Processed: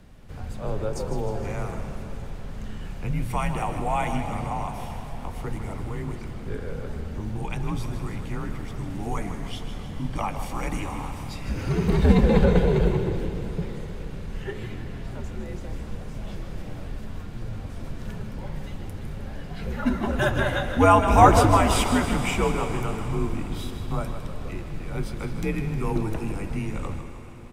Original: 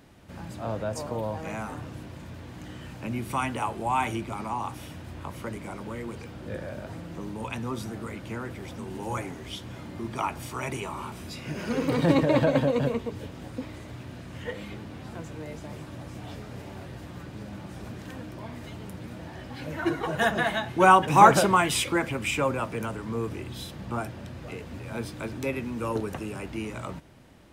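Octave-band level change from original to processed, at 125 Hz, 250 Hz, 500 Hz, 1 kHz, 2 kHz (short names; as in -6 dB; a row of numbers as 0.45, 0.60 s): +7.0, +3.5, +2.0, 0.0, -1.5 dB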